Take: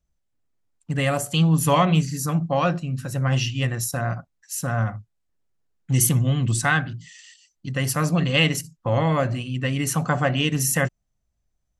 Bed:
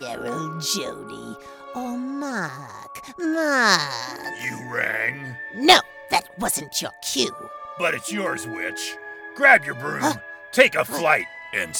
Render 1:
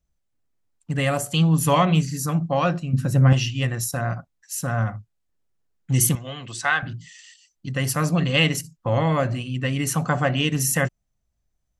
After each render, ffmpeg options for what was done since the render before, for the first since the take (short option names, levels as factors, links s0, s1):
-filter_complex "[0:a]asettb=1/sr,asplit=3[s0][s1][s2];[s0]atrim=end=2.934[s3];[s1]atrim=start=2.93:end=3.33,asetpts=PTS-STARTPTS,afade=t=in:d=0.004:c=qsin,afade=t=out:st=0.396:d=0.004:c=qsin,equalizer=f=190:w=0.44:g=9[s4];[s2]atrim=start=3.326[s5];[s3][s4]acrossfade=d=0.004:c1=hsin:c2=qsin[s6];[s6][s5]acrossfade=d=0.004:c1=qsin:c2=hsin,asettb=1/sr,asplit=3[s7][s8][s9];[s7]atrim=end=6.154[s10];[s8]atrim=start=6.15:end=6.83,asetpts=PTS-STARTPTS,afade=t=in:d=0.004:c=qsin,afade=t=out:st=0.676:d=0.004:c=qsin,acrossover=split=450 6700:gain=0.126 1 0.112[s11][s12][s13];[s11][s12][s13]amix=inputs=3:normalize=0[s14];[s9]atrim=start=6.826[s15];[s10][s14]acrossfade=d=0.004:c1=hsin:c2=qsin[s16];[s16][s15]acrossfade=d=0.004:c1=qsin:c2=hsin"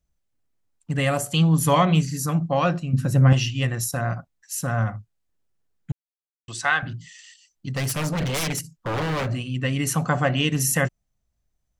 -filter_complex "[0:a]asettb=1/sr,asplit=3[s0][s1][s2];[s0]atrim=end=1.494[s3];[s1]atrim=start=1.49:end=1.93,asetpts=PTS-STARTPTS,afade=t=in:d=0.004:c=qsin,afade=t=out:st=0.436:d=0.004:c=qsin,bandreject=f=2700:w=9.6[s4];[s2]atrim=start=1.926[s5];[s3][s4]acrossfade=d=0.004:c1=hsin:c2=qsin[s6];[s6][s5]acrossfade=d=0.004:c1=qsin:c2=hsin,asettb=1/sr,asplit=3[s7][s8][s9];[s7]atrim=end=7.724[s10];[s8]atrim=start=7.72:end=9.31,asetpts=PTS-STARTPTS,afade=t=in:d=0.004:c=qsin,afade=t=out:st=1.586:d=0.004:c=qsin,aeval=exprs='0.1*(abs(mod(val(0)/0.1+3,4)-2)-1)':c=same[s11];[s9]atrim=start=9.306[s12];[s10][s11]acrossfade=d=0.004:c1=hsin:c2=qsin[s13];[s13][s12]acrossfade=d=0.004:c1=qsin:c2=hsin,asplit=3[s14][s15][s16];[s14]atrim=end=5.92,asetpts=PTS-STARTPTS,afade=t=out:st=5.916:d=0.004:c=hsin[s17];[s15]atrim=start=5.92:end=6.48,asetpts=PTS-STARTPTS,volume=0[s18];[s16]atrim=start=6.48,asetpts=PTS-STARTPTS,afade=t=in:d=0.004:c=hsin[s19];[s17][s18][s19]concat=n=3:v=0:a=1"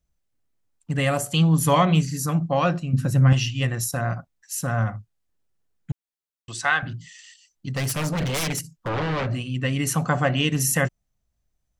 -filter_complex "[0:a]asettb=1/sr,asplit=3[s0][s1][s2];[s0]atrim=end=3.104[s3];[s1]atrim=start=3.1:end=3.61,asetpts=PTS-STARTPTS,afade=t=in:d=0.004:c=qsin,afade=t=out:st=0.506:d=0.004:c=qsin,equalizer=f=500:w=0.8:g=-5[s4];[s2]atrim=start=3.606[s5];[s3][s4]acrossfade=d=0.004:c1=hsin:c2=qsin[s6];[s6][s5]acrossfade=d=0.004:c1=qsin:c2=hsin,asplit=3[s7][s8][s9];[s7]afade=t=out:st=8.88:d=0.02[s10];[s8]lowpass=4400,afade=t=in:st=8.88:d=0.02,afade=t=out:st=9.32:d=0.02[s11];[s9]afade=t=in:st=9.32:d=0.02[s12];[s10][s11][s12]amix=inputs=3:normalize=0"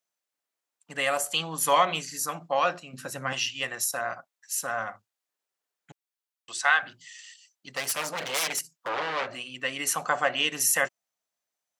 -af "highpass=620"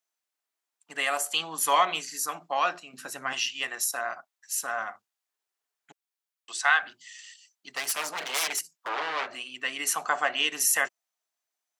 -af "highpass=320,equalizer=f=530:w=7.7:g=-12"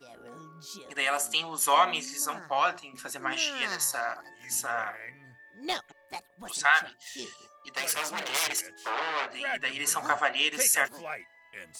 -filter_complex "[1:a]volume=0.106[s0];[0:a][s0]amix=inputs=2:normalize=0"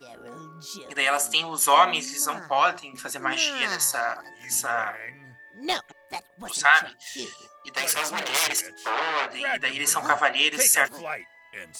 -af "volume=1.78"